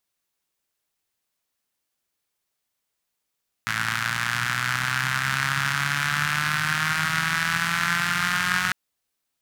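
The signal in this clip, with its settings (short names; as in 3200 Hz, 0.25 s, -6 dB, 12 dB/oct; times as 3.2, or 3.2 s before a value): four-cylinder engine model, changing speed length 5.05 s, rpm 3300, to 5500, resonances 140/1500 Hz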